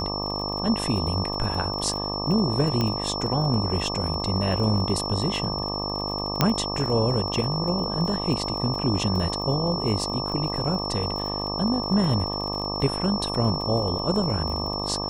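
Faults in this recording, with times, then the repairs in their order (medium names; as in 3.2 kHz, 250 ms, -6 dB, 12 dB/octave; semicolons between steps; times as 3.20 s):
buzz 50 Hz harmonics 24 -31 dBFS
crackle 30 per s -31 dBFS
whine 5.4 kHz -30 dBFS
2.81 s: pop -12 dBFS
6.41 s: pop -4 dBFS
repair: de-click; de-hum 50 Hz, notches 24; band-stop 5.4 kHz, Q 30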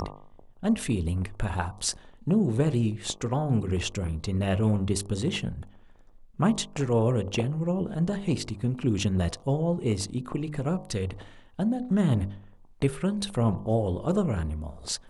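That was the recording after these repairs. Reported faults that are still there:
nothing left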